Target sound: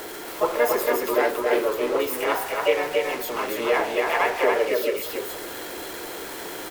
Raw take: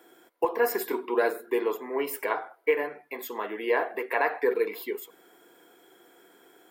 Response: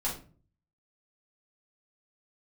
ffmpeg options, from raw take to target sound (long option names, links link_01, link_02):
-filter_complex "[0:a]aeval=exprs='val(0)+0.5*0.0224*sgn(val(0))':channel_layout=same,asplit=2[link_01][link_02];[link_02]asetrate=55563,aresample=44100,atempo=0.793701,volume=-2dB[link_03];[link_01][link_03]amix=inputs=2:normalize=0,asplit=2[link_04][link_05];[link_05]aecho=0:1:279:0.708[link_06];[link_04][link_06]amix=inputs=2:normalize=0"